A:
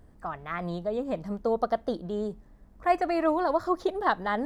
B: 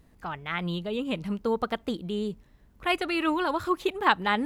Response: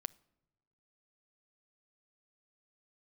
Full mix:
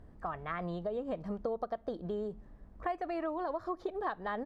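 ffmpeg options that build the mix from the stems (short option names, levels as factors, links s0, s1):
-filter_complex "[0:a]volume=0.794,asplit=2[s0][s1];[s1]volume=0.422[s2];[1:a]adelay=1.9,volume=0.178[s3];[2:a]atrim=start_sample=2205[s4];[s2][s4]afir=irnorm=-1:irlink=0[s5];[s0][s3][s5]amix=inputs=3:normalize=0,lowpass=f=2300:p=1,acompressor=threshold=0.0224:ratio=6"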